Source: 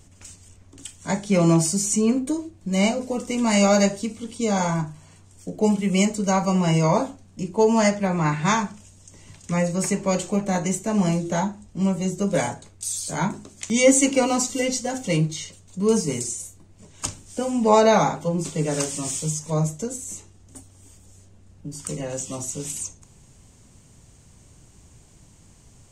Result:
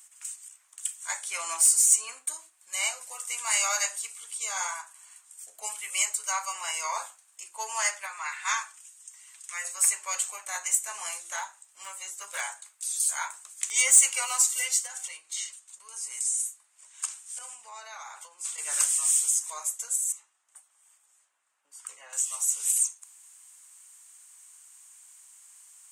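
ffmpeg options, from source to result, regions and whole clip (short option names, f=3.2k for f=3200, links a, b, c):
-filter_complex "[0:a]asettb=1/sr,asplit=3[a][b][c];[a]atrim=end=8.064[d];[b]atrim=start=8.06:end=9.65,asetpts=PTS-STARTPTS,afade=t=in:d=0.004:c=qsin,afade=t=out:st=1.586:d=0.004:c=qsin,highpass=f=1.1k:p=1,highshelf=f=4.6k:g=-4,aecho=1:1:6.3:0.44,atrim=end_sample=70119[e];[c]atrim=start=9.646[f];[d][e]acrossfade=d=0.004:c1=hsin:c2=qsin[g];[g][f]acrossfade=d=0.004:c1=qsin:c2=hsin,asettb=1/sr,asplit=3[h][i][j];[h]atrim=end=11.364[k];[i]atrim=start=11.36:end=13,asetpts=PTS-STARTPTS,afade=t=in:d=0.004:c=qsin,afade=t=out:st=1.636:d=0.004:c=qsin,acrossover=split=5600[l][m];[m]acompressor=threshold=-45dB:ratio=4:attack=1:release=60[n];[l][n]amix=inputs=2:normalize=0,asoftclip=type=hard:threshold=-15dB[o];[j]atrim=start=12.996[p];[k][o]acrossfade=d=0.004:c1=hsin:c2=qsin[q];[q][p]acrossfade=d=0.004:c1=qsin:c2=hsin,asettb=1/sr,asplit=3[r][s][t];[r]atrim=end=14.864[u];[s]atrim=start=14.86:end=18.58,asetpts=PTS-STARTPTS,afade=t=in:d=0.004:c=qsin,afade=t=out:st=3.716:d=0.004:c=qsin,lowpass=9.8k,acompressor=threshold=-28dB:ratio=12:attack=3.2:release=140:knee=1:detection=peak[v];[t]atrim=start=18.576[w];[u][v]acrossfade=d=0.004:c1=hsin:c2=qsin[x];[x][w]acrossfade=d=0.004:c1=qsin:c2=hsin,asettb=1/sr,asplit=3[y][z][aa];[y]atrim=end=20.124[ab];[z]atrim=start=20.12:end=22.13,asetpts=PTS-STARTPTS,afade=t=in:d=0.004:c=qsin,afade=t=out:st=2.006:d=0.004:c=qsin,lowpass=f=1.4k:p=1,aeval=exprs='val(0)+0.00447*(sin(2*PI*60*n/s)+sin(2*PI*2*60*n/s)/2+sin(2*PI*3*60*n/s)/3+sin(2*PI*4*60*n/s)/4+sin(2*PI*5*60*n/s)/5)':c=same[ac];[aa]atrim=start=22.126[ad];[ab][ac]acrossfade=d=0.004:c1=hsin:c2=qsin[ae];[ae][ad]acrossfade=d=0.004:c1=qsin:c2=hsin,highpass=f=1.1k:w=0.5412,highpass=f=1.1k:w=1.3066,highshelf=f=7.2k:t=q:w=1.5:g=10.5,acontrast=61,volume=-7.5dB"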